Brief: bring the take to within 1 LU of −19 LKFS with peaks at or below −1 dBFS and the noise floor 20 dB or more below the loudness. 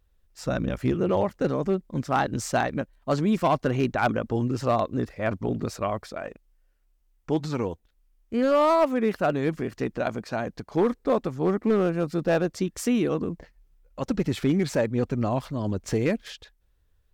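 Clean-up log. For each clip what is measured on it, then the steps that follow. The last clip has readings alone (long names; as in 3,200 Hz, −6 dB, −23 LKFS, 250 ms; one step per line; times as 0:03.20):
share of clipped samples 0.6%; peaks flattened at −15.0 dBFS; integrated loudness −26.0 LKFS; sample peak −15.0 dBFS; target loudness −19.0 LKFS
→ clipped peaks rebuilt −15 dBFS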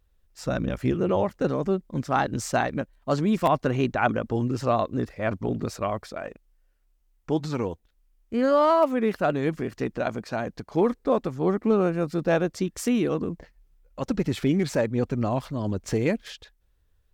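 share of clipped samples 0.0%; integrated loudness −26.0 LKFS; sample peak −8.5 dBFS; target loudness −19.0 LKFS
→ level +7 dB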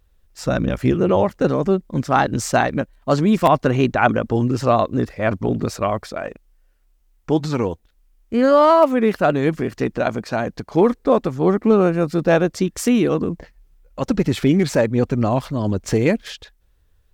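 integrated loudness −19.0 LKFS; sample peak −1.5 dBFS; background noise floor −59 dBFS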